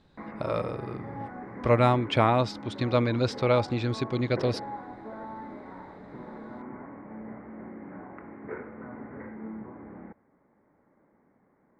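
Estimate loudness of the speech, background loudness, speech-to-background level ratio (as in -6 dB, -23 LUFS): -27.0 LUFS, -41.5 LUFS, 14.5 dB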